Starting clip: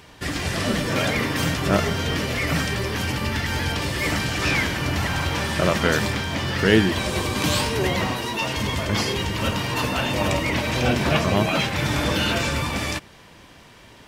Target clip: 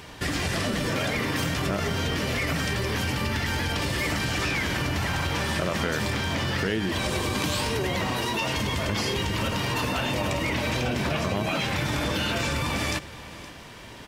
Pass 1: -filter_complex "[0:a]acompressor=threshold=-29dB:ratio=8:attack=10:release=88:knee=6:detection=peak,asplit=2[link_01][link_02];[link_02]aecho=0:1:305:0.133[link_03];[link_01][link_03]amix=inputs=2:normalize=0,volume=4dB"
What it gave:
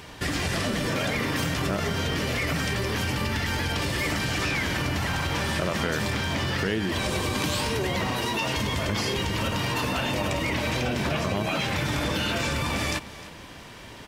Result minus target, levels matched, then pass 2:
echo 213 ms early
-filter_complex "[0:a]acompressor=threshold=-29dB:ratio=8:attack=10:release=88:knee=6:detection=peak,asplit=2[link_01][link_02];[link_02]aecho=0:1:518:0.133[link_03];[link_01][link_03]amix=inputs=2:normalize=0,volume=4dB"

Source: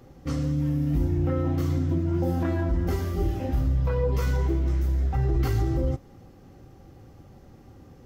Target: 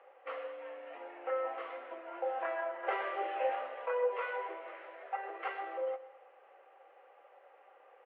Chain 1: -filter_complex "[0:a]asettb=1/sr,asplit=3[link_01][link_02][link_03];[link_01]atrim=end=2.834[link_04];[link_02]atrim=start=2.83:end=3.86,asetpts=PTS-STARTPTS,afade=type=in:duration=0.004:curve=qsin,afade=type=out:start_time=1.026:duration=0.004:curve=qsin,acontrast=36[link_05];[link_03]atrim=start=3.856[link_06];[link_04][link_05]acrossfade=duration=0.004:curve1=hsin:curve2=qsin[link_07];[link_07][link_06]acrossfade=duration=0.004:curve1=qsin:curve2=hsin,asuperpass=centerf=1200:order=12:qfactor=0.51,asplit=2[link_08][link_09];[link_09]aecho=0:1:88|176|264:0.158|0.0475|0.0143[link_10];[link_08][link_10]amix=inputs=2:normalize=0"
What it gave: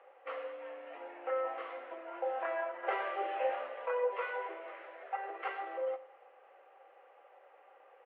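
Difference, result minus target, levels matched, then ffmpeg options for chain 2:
echo 40 ms early
-filter_complex "[0:a]asettb=1/sr,asplit=3[link_01][link_02][link_03];[link_01]atrim=end=2.834[link_04];[link_02]atrim=start=2.83:end=3.86,asetpts=PTS-STARTPTS,afade=type=in:duration=0.004:curve=qsin,afade=type=out:start_time=1.026:duration=0.004:curve=qsin,acontrast=36[link_05];[link_03]atrim=start=3.856[link_06];[link_04][link_05]acrossfade=duration=0.004:curve1=hsin:curve2=qsin[link_07];[link_07][link_06]acrossfade=duration=0.004:curve1=qsin:curve2=hsin,asuperpass=centerf=1200:order=12:qfactor=0.51,asplit=2[link_08][link_09];[link_09]aecho=0:1:128|256|384:0.158|0.0475|0.0143[link_10];[link_08][link_10]amix=inputs=2:normalize=0"

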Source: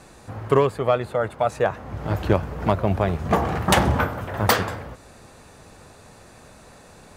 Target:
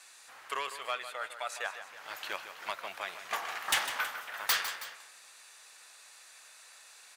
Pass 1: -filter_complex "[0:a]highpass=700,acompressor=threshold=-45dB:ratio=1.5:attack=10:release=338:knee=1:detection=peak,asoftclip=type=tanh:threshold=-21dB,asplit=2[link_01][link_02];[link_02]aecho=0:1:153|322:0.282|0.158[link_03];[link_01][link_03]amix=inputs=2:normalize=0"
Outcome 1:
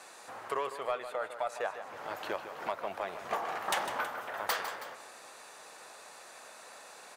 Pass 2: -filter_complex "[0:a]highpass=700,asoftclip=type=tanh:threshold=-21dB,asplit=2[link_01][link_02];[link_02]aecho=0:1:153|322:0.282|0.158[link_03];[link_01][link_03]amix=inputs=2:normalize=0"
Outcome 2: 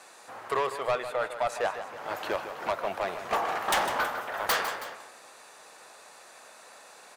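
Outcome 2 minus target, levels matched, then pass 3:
500 Hz band +9.5 dB
-filter_complex "[0:a]highpass=2000,asoftclip=type=tanh:threshold=-21dB,asplit=2[link_01][link_02];[link_02]aecho=0:1:153|322:0.282|0.158[link_03];[link_01][link_03]amix=inputs=2:normalize=0"

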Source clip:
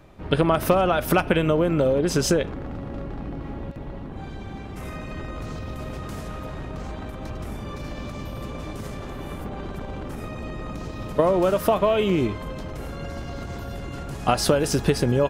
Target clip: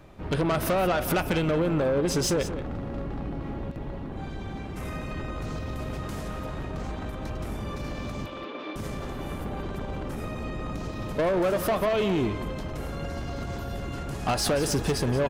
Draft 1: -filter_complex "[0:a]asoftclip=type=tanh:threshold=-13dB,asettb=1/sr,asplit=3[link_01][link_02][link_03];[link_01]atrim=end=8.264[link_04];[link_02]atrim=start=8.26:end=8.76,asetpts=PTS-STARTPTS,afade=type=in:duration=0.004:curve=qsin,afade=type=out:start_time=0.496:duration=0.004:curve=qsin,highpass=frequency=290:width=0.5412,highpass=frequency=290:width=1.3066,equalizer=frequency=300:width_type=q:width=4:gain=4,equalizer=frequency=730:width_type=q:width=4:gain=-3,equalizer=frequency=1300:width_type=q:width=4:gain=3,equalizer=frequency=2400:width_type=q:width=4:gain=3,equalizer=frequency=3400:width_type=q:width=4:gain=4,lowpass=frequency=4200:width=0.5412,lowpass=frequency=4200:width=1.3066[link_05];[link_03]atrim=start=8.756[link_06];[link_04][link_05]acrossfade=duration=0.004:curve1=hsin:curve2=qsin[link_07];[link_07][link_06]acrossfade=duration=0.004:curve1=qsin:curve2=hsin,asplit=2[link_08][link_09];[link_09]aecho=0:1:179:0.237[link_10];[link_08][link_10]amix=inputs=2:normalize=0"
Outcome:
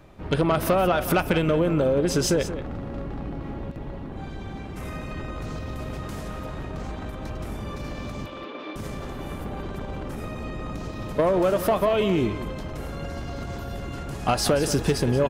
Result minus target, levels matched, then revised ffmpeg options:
soft clipping: distortion −8 dB
-filter_complex "[0:a]asoftclip=type=tanh:threshold=-20.5dB,asettb=1/sr,asplit=3[link_01][link_02][link_03];[link_01]atrim=end=8.264[link_04];[link_02]atrim=start=8.26:end=8.76,asetpts=PTS-STARTPTS,afade=type=in:duration=0.004:curve=qsin,afade=type=out:start_time=0.496:duration=0.004:curve=qsin,highpass=frequency=290:width=0.5412,highpass=frequency=290:width=1.3066,equalizer=frequency=300:width_type=q:width=4:gain=4,equalizer=frequency=730:width_type=q:width=4:gain=-3,equalizer=frequency=1300:width_type=q:width=4:gain=3,equalizer=frequency=2400:width_type=q:width=4:gain=3,equalizer=frequency=3400:width_type=q:width=4:gain=4,lowpass=frequency=4200:width=0.5412,lowpass=frequency=4200:width=1.3066[link_05];[link_03]atrim=start=8.756[link_06];[link_04][link_05]acrossfade=duration=0.004:curve1=hsin:curve2=qsin[link_07];[link_07][link_06]acrossfade=duration=0.004:curve1=qsin:curve2=hsin,asplit=2[link_08][link_09];[link_09]aecho=0:1:179:0.237[link_10];[link_08][link_10]amix=inputs=2:normalize=0"

